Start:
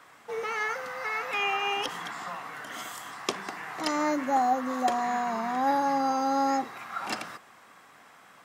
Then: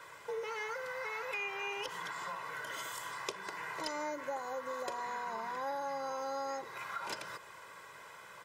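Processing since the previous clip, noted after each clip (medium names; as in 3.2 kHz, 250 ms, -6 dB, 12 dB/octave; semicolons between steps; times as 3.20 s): comb 2 ms, depth 82%; compression 3:1, threshold -40 dBFS, peak gain reduction 14 dB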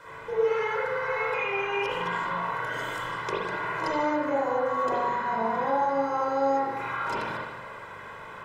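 tilt EQ -2 dB/octave; spring tank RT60 1.1 s, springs 40/58 ms, chirp 40 ms, DRR -8.5 dB; trim +2 dB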